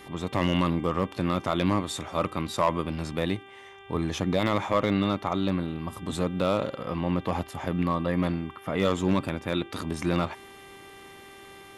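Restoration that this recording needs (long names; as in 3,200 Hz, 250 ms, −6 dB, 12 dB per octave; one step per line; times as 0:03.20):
clipped peaks rebuilt −14 dBFS
hum removal 393.3 Hz, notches 9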